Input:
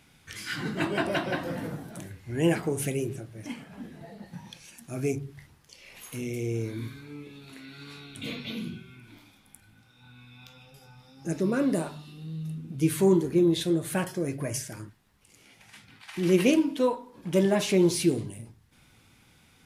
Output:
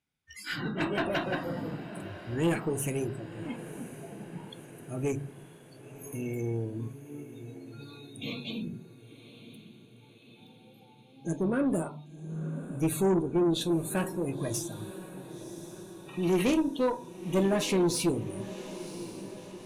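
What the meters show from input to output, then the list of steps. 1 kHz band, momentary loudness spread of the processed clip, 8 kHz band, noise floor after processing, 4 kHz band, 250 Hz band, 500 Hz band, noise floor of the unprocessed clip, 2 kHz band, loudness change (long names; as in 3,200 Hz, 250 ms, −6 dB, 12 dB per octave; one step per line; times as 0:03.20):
0.0 dB, 19 LU, −1.5 dB, −56 dBFS, −2.0 dB, −3.0 dB, −3.0 dB, −60 dBFS, −2.5 dB, −3.5 dB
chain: noise reduction from a noise print of the clip's start 26 dB
tube saturation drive 20 dB, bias 0.3
feedback delay with all-pass diffusion 1,039 ms, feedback 59%, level −14 dB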